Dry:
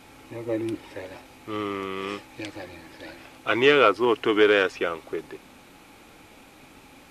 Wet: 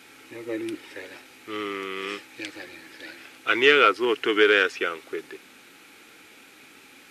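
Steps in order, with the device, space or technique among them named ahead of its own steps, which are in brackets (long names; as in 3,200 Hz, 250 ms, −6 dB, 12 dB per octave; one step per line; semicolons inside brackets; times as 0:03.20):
filter by subtraction (in parallel: low-pass filter 840 Hz 12 dB per octave + polarity inversion)
on the sum: flat-topped bell 790 Hz −10.5 dB 1.3 octaves
level +2.5 dB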